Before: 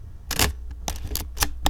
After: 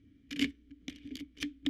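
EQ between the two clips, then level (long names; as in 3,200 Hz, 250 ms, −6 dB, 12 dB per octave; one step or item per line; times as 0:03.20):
formant filter i
parametric band 280 Hz +6 dB 0.3 octaves
+1.0 dB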